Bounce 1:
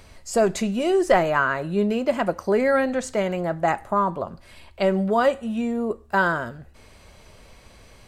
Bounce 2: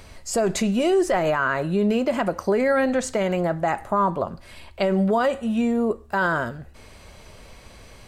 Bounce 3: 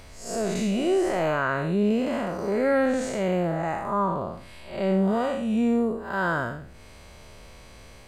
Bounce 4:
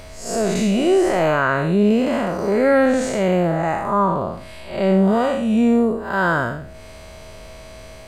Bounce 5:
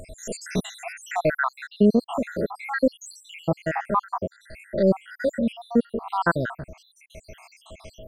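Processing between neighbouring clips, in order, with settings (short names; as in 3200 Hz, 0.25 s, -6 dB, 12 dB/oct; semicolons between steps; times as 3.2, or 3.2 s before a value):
limiter -16.5 dBFS, peak gain reduction 10 dB; gain +3.5 dB
time blur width 0.176 s
whine 640 Hz -49 dBFS; gain +7 dB
random spectral dropouts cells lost 81%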